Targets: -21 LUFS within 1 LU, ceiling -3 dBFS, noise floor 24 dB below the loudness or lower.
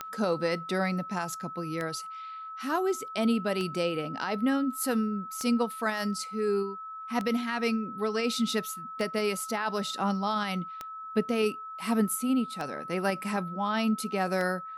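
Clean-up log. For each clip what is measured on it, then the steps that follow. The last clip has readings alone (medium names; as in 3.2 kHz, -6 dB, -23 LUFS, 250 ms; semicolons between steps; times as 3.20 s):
clicks found 9; steady tone 1.3 kHz; tone level -38 dBFS; loudness -30.0 LUFS; peak level -15.5 dBFS; loudness target -21.0 LUFS
-> de-click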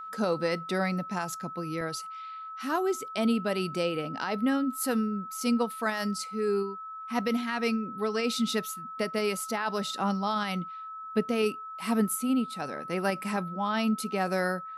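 clicks found 0; steady tone 1.3 kHz; tone level -38 dBFS
-> band-stop 1.3 kHz, Q 30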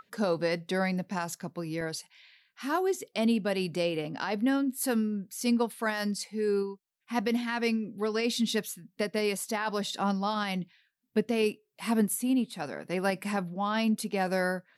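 steady tone not found; loudness -30.5 LUFS; peak level -15.0 dBFS; loudness target -21.0 LUFS
-> trim +9.5 dB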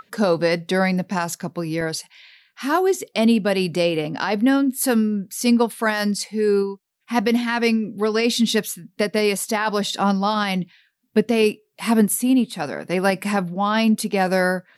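loudness -21.0 LUFS; peak level -5.5 dBFS; noise floor -68 dBFS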